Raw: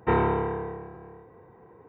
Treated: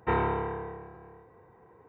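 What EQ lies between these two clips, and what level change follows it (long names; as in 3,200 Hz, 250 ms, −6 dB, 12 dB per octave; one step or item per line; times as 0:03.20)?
parametric band 240 Hz −5 dB 2.6 octaves
−1.5 dB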